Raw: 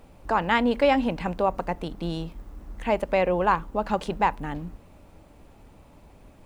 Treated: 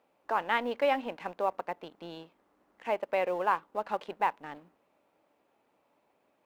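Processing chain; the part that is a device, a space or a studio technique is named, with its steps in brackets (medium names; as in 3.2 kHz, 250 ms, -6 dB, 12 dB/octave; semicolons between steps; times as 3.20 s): phone line with mismatched companding (band-pass 400–3400 Hz; companding laws mixed up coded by A); trim -5 dB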